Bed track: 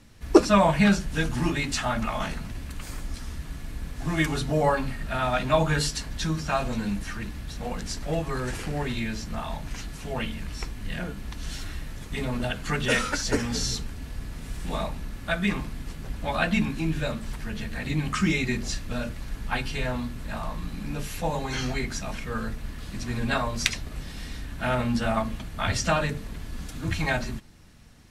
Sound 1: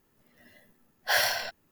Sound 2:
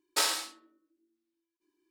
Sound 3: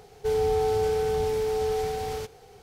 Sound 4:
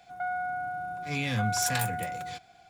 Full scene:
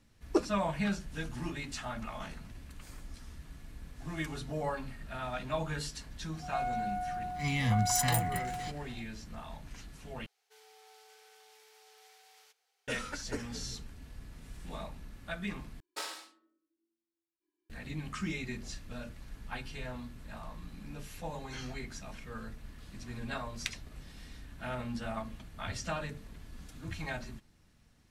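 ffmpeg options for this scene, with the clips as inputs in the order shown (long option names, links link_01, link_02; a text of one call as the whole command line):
ffmpeg -i bed.wav -i cue0.wav -i cue1.wav -i cue2.wav -i cue3.wav -filter_complex "[0:a]volume=-12.5dB[link_01];[4:a]aecho=1:1:1:0.8[link_02];[3:a]highpass=1500[link_03];[2:a]highshelf=frequency=4200:gain=-7[link_04];[link_01]asplit=3[link_05][link_06][link_07];[link_05]atrim=end=10.264[link_08];[link_03]atrim=end=2.62,asetpts=PTS-STARTPTS,volume=-18dB[link_09];[link_06]atrim=start=12.876:end=15.804[link_10];[link_04]atrim=end=1.9,asetpts=PTS-STARTPTS,volume=-9.5dB[link_11];[link_07]atrim=start=17.696[link_12];[link_02]atrim=end=2.69,asetpts=PTS-STARTPTS,volume=-3dB,afade=type=in:duration=0.004:curve=hsin,afade=type=out:start_time=2.686:duration=0.004:curve=hsin,adelay=6330[link_13];[link_08][link_09]acrossfade=duration=0.004:curve1=hsin:curve2=hsin[link_14];[link_14][link_10]acrossfade=duration=0.004:curve1=hsin:curve2=hsin[link_15];[link_15][link_11]acrossfade=duration=0.004:curve1=hsin:curve2=hsin[link_16];[link_16][link_12]acrossfade=duration=0.004:curve1=hsin:curve2=hsin[link_17];[link_17][link_13]amix=inputs=2:normalize=0" out.wav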